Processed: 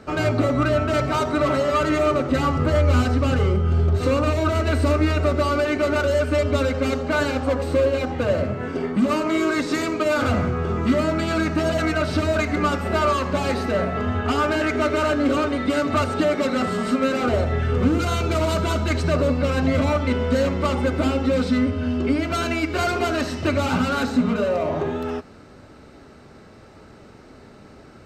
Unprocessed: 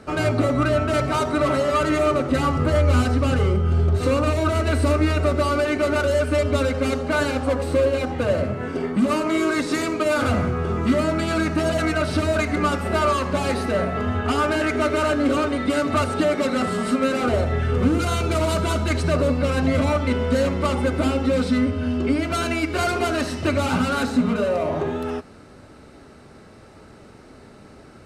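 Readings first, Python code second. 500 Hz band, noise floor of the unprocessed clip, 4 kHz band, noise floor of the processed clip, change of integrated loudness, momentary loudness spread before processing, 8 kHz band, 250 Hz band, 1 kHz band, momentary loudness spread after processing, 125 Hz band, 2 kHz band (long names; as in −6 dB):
0.0 dB, −46 dBFS, 0.0 dB, −46 dBFS, 0.0 dB, 3 LU, −2.5 dB, 0.0 dB, 0.0 dB, 3 LU, 0.0 dB, 0.0 dB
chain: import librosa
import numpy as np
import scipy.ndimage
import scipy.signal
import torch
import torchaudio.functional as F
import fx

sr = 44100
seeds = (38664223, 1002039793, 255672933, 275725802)

y = fx.peak_eq(x, sr, hz=9800.0, db=-14.0, octaves=0.24)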